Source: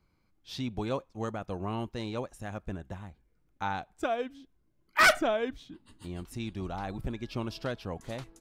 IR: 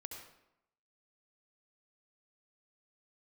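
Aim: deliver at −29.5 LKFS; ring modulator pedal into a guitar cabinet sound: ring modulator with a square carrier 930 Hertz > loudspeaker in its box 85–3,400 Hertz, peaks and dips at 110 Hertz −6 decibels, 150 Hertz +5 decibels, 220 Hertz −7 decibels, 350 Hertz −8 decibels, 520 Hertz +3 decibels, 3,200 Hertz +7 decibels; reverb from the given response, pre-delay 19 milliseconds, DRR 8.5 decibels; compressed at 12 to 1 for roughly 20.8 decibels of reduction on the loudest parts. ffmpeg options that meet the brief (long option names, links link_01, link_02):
-filter_complex "[0:a]acompressor=threshold=-39dB:ratio=12,asplit=2[link_01][link_02];[1:a]atrim=start_sample=2205,adelay=19[link_03];[link_02][link_03]afir=irnorm=-1:irlink=0,volume=-5dB[link_04];[link_01][link_04]amix=inputs=2:normalize=0,aeval=exprs='val(0)*sgn(sin(2*PI*930*n/s))':channel_layout=same,highpass=85,equalizer=frequency=110:width_type=q:width=4:gain=-6,equalizer=frequency=150:width_type=q:width=4:gain=5,equalizer=frequency=220:width_type=q:width=4:gain=-7,equalizer=frequency=350:width_type=q:width=4:gain=-8,equalizer=frequency=520:width_type=q:width=4:gain=3,equalizer=frequency=3200:width_type=q:width=4:gain=7,lowpass=frequency=3400:width=0.5412,lowpass=frequency=3400:width=1.3066,volume=13.5dB"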